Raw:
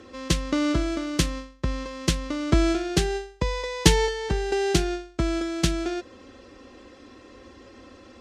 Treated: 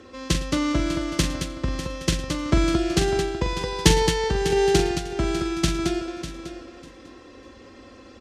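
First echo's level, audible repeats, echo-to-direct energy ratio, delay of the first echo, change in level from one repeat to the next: -8.5 dB, 10, -3.5 dB, 43 ms, no regular repeats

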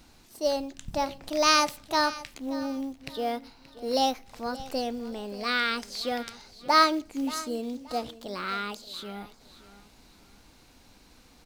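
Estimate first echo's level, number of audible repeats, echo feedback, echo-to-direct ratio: -17.0 dB, 2, 30%, -16.5 dB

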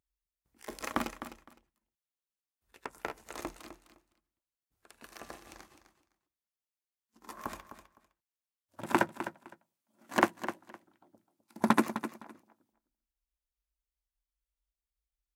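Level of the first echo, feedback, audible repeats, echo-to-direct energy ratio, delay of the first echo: -11.5 dB, 18%, 2, -11.5 dB, 256 ms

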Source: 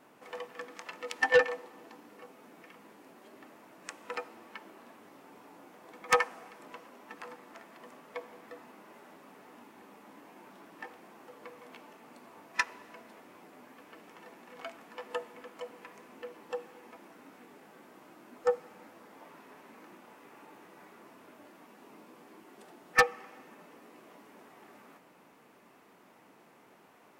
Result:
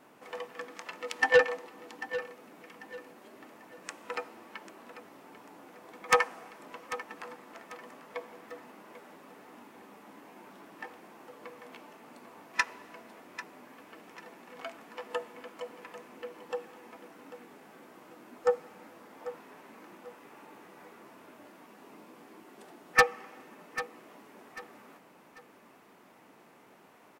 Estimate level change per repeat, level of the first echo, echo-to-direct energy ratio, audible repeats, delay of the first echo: -10.0 dB, -14.0 dB, -13.5 dB, 3, 793 ms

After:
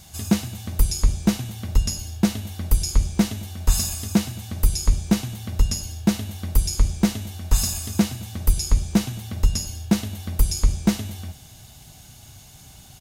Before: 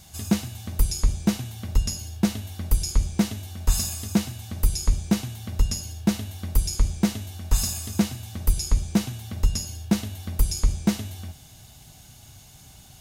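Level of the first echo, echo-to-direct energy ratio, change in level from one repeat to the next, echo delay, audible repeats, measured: -23.5 dB, -23.5 dB, no regular repeats, 219 ms, 1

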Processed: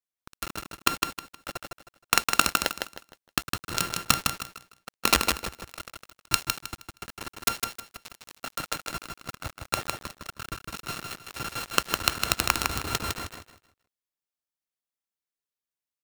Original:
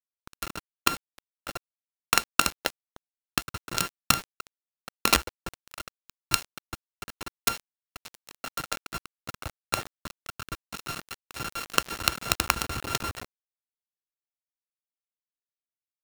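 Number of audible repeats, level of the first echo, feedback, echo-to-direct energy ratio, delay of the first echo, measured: 3, -4.5 dB, 27%, -4.0 dB, 157 ms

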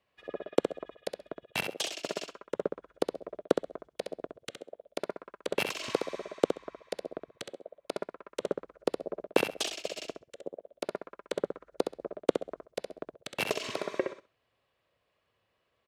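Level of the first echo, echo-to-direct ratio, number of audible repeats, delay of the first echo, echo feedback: -6.5 dB, -6.5 dB, 2, 66 ms, 18%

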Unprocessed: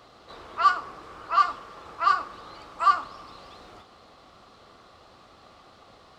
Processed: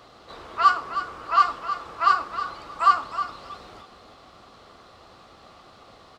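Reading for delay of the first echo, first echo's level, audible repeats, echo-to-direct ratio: 315 ms, -10.5 dB, 2, -10.5 dB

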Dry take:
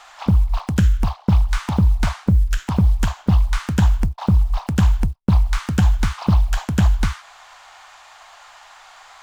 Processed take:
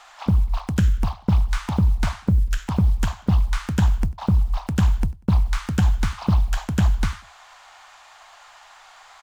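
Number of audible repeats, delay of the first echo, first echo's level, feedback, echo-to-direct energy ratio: 2, 96 ms, -23.0 dB, 32%, -22.5 dB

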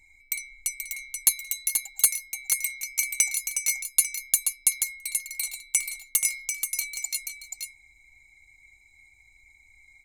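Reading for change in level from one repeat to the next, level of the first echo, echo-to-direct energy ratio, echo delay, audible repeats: no regular repeats, -6.0 dB, -6.0 dB, 481 ms, 1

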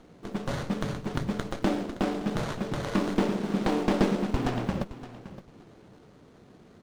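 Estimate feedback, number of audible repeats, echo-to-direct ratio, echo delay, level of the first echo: 17%, 2, -15.0 dB, 568 ms, -15.0 dB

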